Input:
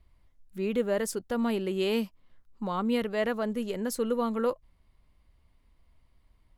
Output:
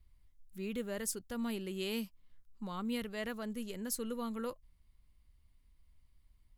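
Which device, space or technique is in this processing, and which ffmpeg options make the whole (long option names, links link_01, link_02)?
smiley-face EQ: -af "lowshelf=frequency=87:gain=6,equalizer=frequency=620:width_type=o:width=2.1:gain=-7,highshelf=frequency=5400:gain=8.5,volume=-7dB"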